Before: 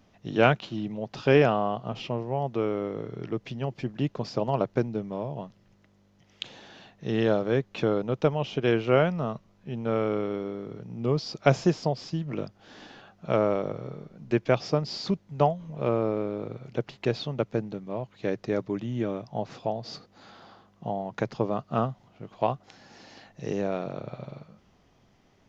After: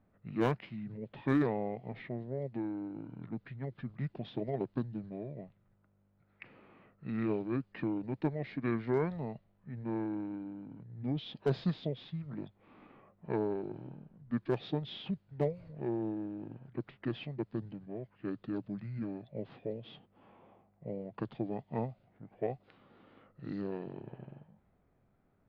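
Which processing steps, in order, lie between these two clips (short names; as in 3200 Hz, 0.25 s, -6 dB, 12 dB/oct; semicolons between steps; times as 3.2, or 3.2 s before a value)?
low-pass opened by the level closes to 2100 Hz, open at -22.5 dBFS; hard clip -9.5 dBFS, distortion -24 dB; formant shift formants -6 st; gain -9 dB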